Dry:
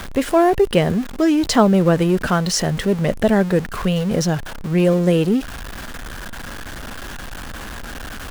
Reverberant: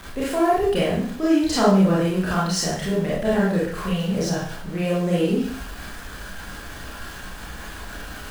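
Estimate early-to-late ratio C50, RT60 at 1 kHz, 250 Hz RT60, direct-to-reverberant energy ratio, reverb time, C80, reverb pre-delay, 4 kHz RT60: 0.5 dB, 0.50 s, 0.45 s, -7.5 dB, 0.50 s, 6.0 dB, 26 ms, 0.50 s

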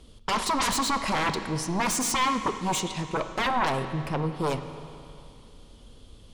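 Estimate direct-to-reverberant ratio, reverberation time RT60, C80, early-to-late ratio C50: 8.0 dB, 2.6 s, 10.0 dB, 9.0 dB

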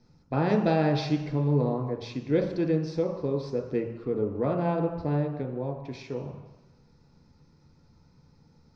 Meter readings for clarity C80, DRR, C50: 8.5 dB, 1.5 dB, 6.0 dB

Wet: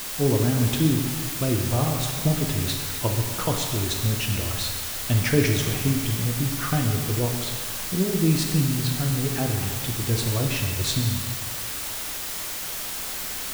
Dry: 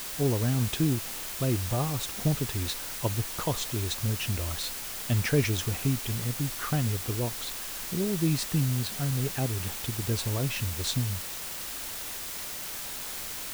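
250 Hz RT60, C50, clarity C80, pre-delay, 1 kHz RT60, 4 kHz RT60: 1.7 s, 4.0 dB, 5.5 dB, 6 ms, 1.6 s, 1.6 s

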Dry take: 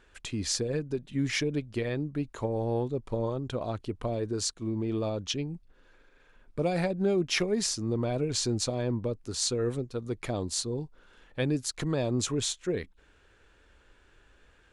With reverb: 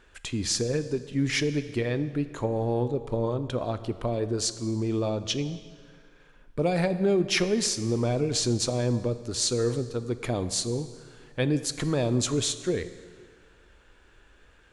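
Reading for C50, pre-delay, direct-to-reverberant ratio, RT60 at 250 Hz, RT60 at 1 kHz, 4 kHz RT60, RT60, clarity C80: 12.5 dB, 13 ms, 11.5 dB, 1.8 s, 1.9 s, 1.6 s, 1.9 s, 14.0 dB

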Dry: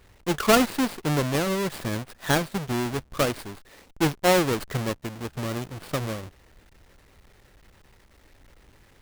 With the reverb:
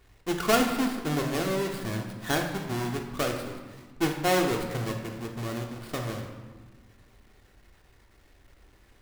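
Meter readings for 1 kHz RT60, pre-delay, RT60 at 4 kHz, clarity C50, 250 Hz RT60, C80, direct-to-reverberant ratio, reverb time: 1.5 s, 3 ms, 0.95 s, 5.5 dB, 2.2 s, 7.5 dB, 2.0 dB, 1.5 s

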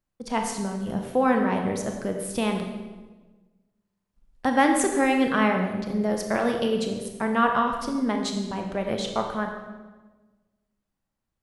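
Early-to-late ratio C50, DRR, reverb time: 5.0 dB, 3.0 dB, 1.3 s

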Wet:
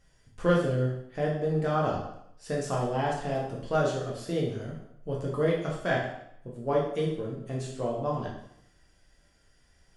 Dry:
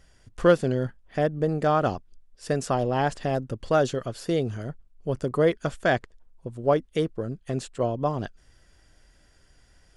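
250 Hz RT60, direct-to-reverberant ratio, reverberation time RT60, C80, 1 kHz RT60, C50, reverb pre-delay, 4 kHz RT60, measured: 0.75 s, -3.5 dB, 0.75 s, 7.0 dB, 0.75 s, 3.5 dB, 5 ms, 0.70 s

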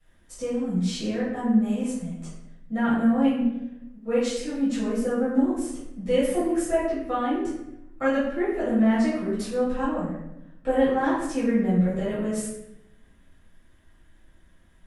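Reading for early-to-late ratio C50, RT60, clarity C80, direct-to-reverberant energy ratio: 0.5 dB, 0.85 s, 4.5 dB, -13.0 dB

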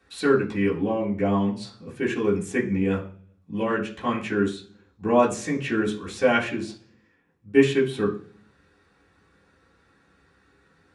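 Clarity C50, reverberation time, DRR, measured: 11.0 dB, 0.45 s, -7.0 dB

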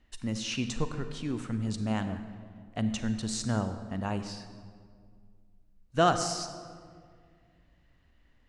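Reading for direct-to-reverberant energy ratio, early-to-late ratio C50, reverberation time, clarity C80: 9.0 dB, 9.5 dB, 2.0 s, 10.5 dB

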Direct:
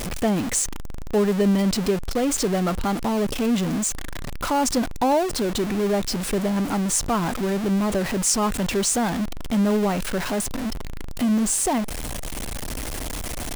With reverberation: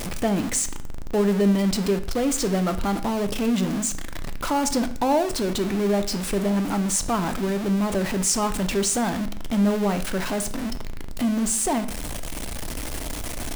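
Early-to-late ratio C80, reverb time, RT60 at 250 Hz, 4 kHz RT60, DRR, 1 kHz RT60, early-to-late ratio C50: 16.5 dB, 0.60 s, 0.80 s, 0.50 s, 9.5 dB, 0.60 s, 13.5 dB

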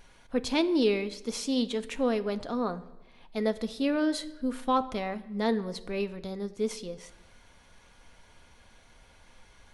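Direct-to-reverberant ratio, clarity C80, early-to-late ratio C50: 9.5 dB, 18.5 dB, 17.0 dB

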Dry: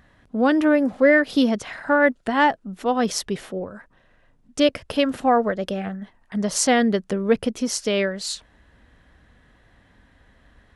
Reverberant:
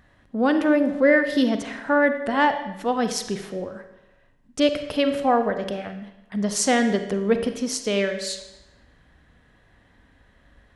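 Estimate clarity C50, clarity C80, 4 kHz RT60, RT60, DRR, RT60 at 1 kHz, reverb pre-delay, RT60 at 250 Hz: 9.0 dB, 11.0 dB, 0.90 s, 0.95 s, 7.5 dB, 0.95 s, 36 ms, 0.95 s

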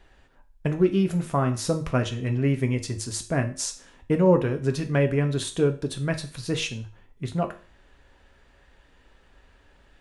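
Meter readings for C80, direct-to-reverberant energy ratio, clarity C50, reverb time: 18.0 dB, 5.0 dB, 13.0 dB, 0.40 s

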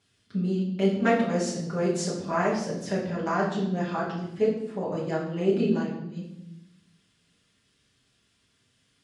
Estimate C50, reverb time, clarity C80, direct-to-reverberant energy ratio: 5.0 dB, 0.85 s, 8.0 dB, -7.5 dB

